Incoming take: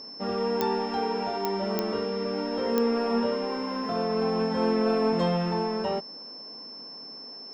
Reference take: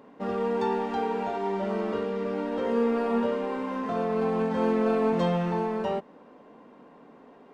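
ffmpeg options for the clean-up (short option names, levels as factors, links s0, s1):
-af "adeclick=t=4,bandreject=f=5300:w=30"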